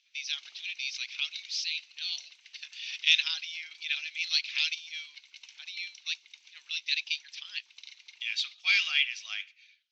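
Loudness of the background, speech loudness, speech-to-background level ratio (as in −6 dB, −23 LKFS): −48.0 LKFS, −30.5 LKFS, 17.5 dB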